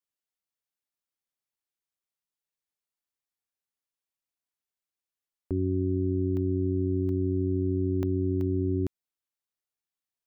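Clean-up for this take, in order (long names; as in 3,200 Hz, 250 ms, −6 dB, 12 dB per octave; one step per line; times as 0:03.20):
repair the gap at 0:06.37/0:07.09/0:08.03/0:08.41, 1.1 ms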